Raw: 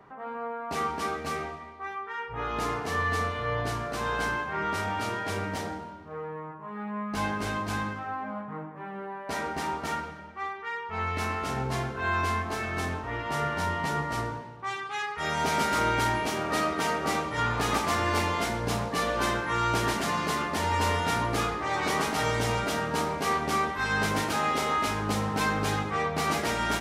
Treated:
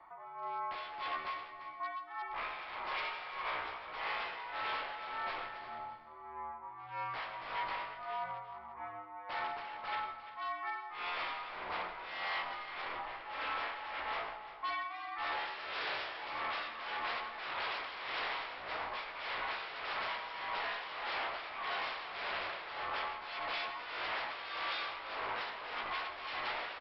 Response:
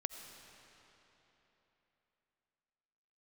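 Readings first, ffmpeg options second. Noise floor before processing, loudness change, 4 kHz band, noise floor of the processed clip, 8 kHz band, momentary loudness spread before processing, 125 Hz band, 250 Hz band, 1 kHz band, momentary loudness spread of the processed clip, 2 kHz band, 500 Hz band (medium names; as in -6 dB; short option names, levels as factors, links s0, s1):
-42 dBFS, -10.5 dB, -7.0 dB, -49 dBFS, under -35 dB, 10 LU, -31.0 dB, -25.5 dB, -10.0 dB, 5 LU, -8.0 dB, -15.0 dB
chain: -filter_complex "[0:a]equalizer=f=62:t=o:w=0.44:g=13.5,bandreject=f=3300:w=12,aecho=1:1:0.9:0.58,aresample=11025,aeval=exprs='0.0422*(abs(mod(val(0)/0.0422+3,4)-2)-1)':c=same,aresample=44100,afreqshift=-83,tremolo=f=1.7:d=0.68,acrossover=split=470 3900:gain=0.0794 1 0.126[s0][s1][s2];[s0][s1][s2]amix=inputs=3:normalize=0,aecho=1:1:344:0.211[s3];[1:a]atrim=start_sample=2205,afade=t=out:st=0.23:d=0.01,atrim=end_sample=10584[s4];[s3][s4]afir=irnorm=-1:irlink=0,volume=0.891"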